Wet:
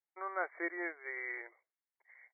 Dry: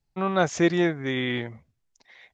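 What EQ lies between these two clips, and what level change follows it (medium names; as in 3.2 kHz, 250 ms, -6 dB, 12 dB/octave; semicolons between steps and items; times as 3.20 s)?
brick-wall FIR band-pass 310–2300 Hz; distance through air 280 m; differentiator; +6.5 dB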